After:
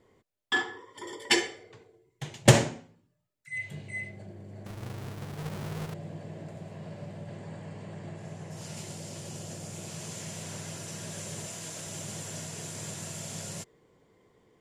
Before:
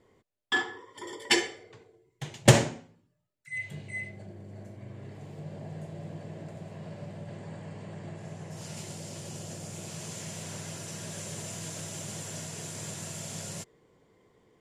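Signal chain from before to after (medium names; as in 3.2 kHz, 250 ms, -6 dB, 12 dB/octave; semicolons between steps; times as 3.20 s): 4.66–5.94 s: square wave that keeps the level; 11.46–11.87 s: bass shelf 170 Hz -9 dB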